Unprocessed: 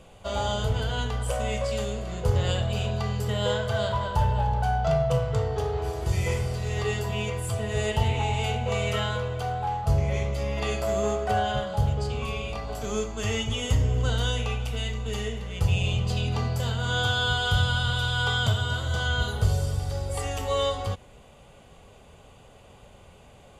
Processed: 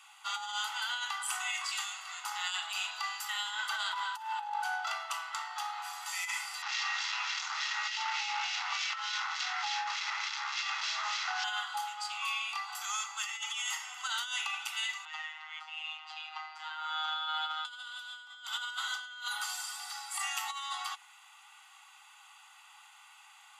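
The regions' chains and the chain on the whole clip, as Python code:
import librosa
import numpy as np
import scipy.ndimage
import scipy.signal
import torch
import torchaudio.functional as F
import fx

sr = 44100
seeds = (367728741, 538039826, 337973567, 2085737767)

y = fx.chain(x, sr, fx.delta_mod(bps=32000, step_db=-23.0),
    fx.harmonic_tremolo(hz=3.4, depth_pct=70, crossover_hz=1900.0), at=(6.62, 11.44))
y = fx.chain(y, sr, fx.robotise(hz=156.0),
    fx.spacing_loss(db_at_10k=34),
    fx.env_flatten(amount_pct=50), at=(15.05, 17.65))
y = scipy.signal.sosfilt(scipy.signal.butter(16, 840.0, 'highpass', fs=sr, output='sos'), y)
y = y + 0.47 * np.pad(y, (int(1.5 * sr / 1000.0), 0))[:len(y)]
y = fx.over_compress(y, sr, threshold_db=-35.0, ratio=-0.5)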